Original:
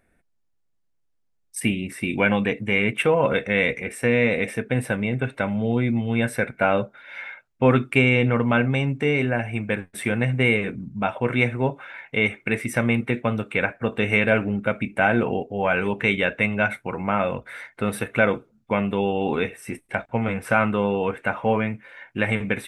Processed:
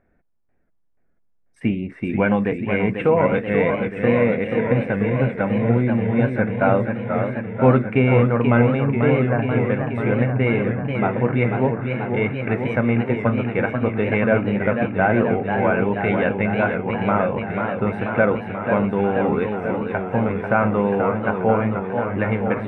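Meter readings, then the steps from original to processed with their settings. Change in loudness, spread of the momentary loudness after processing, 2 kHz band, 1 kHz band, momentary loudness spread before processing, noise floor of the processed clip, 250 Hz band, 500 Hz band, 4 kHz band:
+2.5 dB, 6 LU, -2.0 dB, +3.5 dB, 9 LU, -62 dBFS, +4.0 dB, +4.0 dB, -8.0 dB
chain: low-pass 1.4 kHz 12 dB/octave; modulated delay 487 ms, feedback 76%, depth 143 cents, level -6.5 dB; trim +2.5 dB

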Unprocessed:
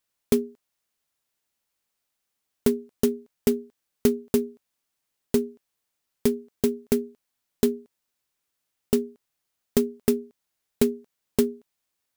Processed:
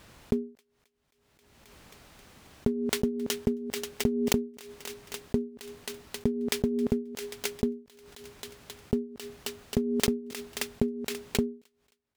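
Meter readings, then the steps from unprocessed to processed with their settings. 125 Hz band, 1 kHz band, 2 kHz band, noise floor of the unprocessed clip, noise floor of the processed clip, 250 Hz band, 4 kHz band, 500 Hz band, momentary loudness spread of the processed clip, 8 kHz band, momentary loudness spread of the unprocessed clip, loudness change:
+1.0 dB, +1.0 dB, +5.0 dB, -81 dBFS, -74 dBFS, -3.5 dB, +5.0 dB, -6.0 dB, 16 LU, +0.5 dB, 7 LU, -5.0 dB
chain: high-pass 82 Hz 6 dB/octave; RIAA curve playback; compression, threshold -14 dBFS, peak gain reduction 5.5 dB; feedback echo behind a high-pass 267 ms, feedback 50%, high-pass 2.4 kHz, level -12 dB; swell ahead of each attack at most 33 dB/s; trim -8 dB

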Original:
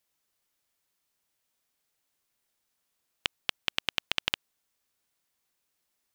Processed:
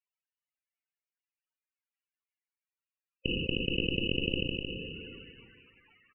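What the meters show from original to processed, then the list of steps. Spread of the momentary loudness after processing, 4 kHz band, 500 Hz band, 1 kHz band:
16 LU, -1.0 dB, +12.0 dB, under -20 dB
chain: high-pass 220 Hz 6 dB/octave; peaking EQ 400 Hz -6 dB 2.2 oct; transient shaper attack +1 dB, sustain -5 dB; Chebyshev shaper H 2 -28 dB, 5 -19 dB, 6 -7 dB, 7 -20 dB, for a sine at -6 dBFS; loudest bins only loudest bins 64; brick-wall FIR low-pass 3 kHz; delay 309 ms -10 dB; two-slope reverb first 0.5 s, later 1.9 s, from -18 dB, DRR 18.5 dB; decay stretcher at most 21 dB/s; trim -2.5 dB

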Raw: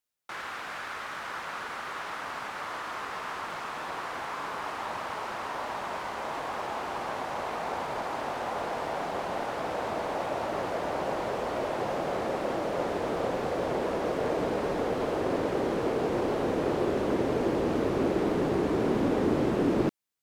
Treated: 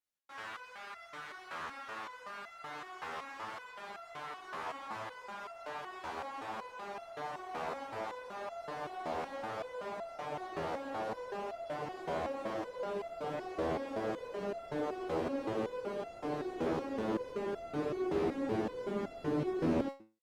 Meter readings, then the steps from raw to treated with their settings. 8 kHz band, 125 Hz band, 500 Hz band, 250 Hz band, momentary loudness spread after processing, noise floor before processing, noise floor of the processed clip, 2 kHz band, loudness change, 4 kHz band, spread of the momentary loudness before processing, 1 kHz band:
-11.5 dB, -9.5 dB, -8.5 dB, -8.5 dB, 10 LU, -38 dBFS, -52 dBFS, -9.0 dB, -8.5 dB, -9.5 dB, 9 LU, -8.5 dB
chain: treble shelf 8.2 kHz -6.5 dB; resonator arpeggio 5.3 Hz 81–680 Hz; trim +3.5 dB

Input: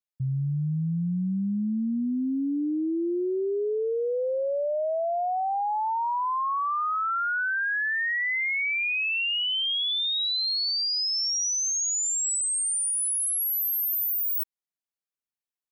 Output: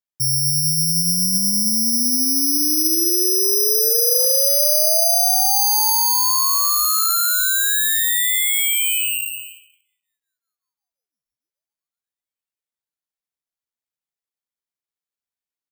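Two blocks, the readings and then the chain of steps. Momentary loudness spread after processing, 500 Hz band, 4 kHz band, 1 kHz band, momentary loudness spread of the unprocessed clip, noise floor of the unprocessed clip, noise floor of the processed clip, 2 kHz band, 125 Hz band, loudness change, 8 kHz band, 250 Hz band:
3 LU, +1.5 dB, +6.0 dB, +1.0 dB, 4 LU, under -85 dBFS, under -85 dBFS, -0.5 dB, no reading, +11.0 dB, +10.0 dB, 0.0 dB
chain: dynamic bell 610 Hz, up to +3 dB, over -39 dBFS, Q 0.95; plate-style reverb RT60 0.78 s, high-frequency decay 0.8×, pre-delay 115 ms, DRR 17.5 dB; careless resampling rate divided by 8×, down filtered, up zero stuff; speakerphone echo 190 ms, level -13 dB; trim -1 dB

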